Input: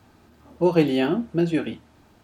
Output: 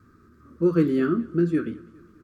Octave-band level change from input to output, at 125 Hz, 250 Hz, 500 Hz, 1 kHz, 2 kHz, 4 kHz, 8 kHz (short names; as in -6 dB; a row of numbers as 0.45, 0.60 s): 0.0 dB, 0.0 dB, -2.5 dB, -7.5 dB, -4.0 dB, under -10 dB, n/a